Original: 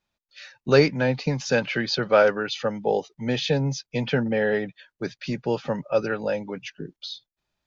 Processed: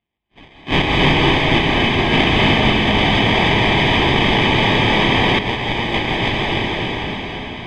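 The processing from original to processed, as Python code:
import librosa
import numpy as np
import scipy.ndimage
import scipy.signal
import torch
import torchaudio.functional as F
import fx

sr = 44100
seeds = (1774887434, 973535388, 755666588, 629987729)

y = fx.spec_flatten(x, sr, power=0.27)
y = fx.sample_hold(y, sr, seeds[0], rate_hz=1400.0, jitter_pct=0)
y = fx.lowpass_res(y, sr, hz=2900.0, q=6.2)
y = fx.peak_eq(y, sr, hz=530.0, db=-9.0, octaves=0.46)
y = y + 10.0 ** (-4.0 / 20.0) * np.pad(y, (int(297 * sr / 1000.0), 0))[:len(y)]
y = fx.rev_plate(y, sr, seeds[1], rt60_s=4.7, hf_ratio=0.9, predelay_ms=120, drr_db=-5.5)
y = fx.env_flatten(y, sr, amount_pct=100, at=(2.95, 5.39))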